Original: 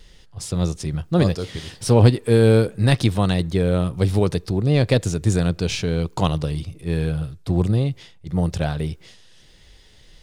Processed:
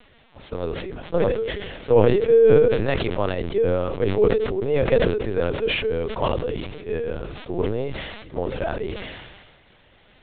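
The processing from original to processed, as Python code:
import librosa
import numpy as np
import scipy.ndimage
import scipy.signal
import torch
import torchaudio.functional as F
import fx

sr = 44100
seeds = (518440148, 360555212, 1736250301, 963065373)

p1 = scipy.signal.sosfilt(scipy.signal.butter(4, 3000.0, 'lowpass', fs=sr, output='sos'), x)
p2 = fx.quant_dither(p1, sr, seeds[0], bits=6, dither='triangular')
p3 = p1 + F.gain(torch.from_numpy(p2), -12.0).numpy()
p4 = fx.low_shelf_res(p3, sr, hz=310.0, db=-9.5, q=3.0)
p5 = fx.lpc_vocoder(p4, sr, seeds[1], excitation='pitch_kept', order=10)
p6 = fx.sustainer(p5, sr, db_per_s=38.0)
y = F.gain(torch.from_numpy(p6), -4.5).numpy()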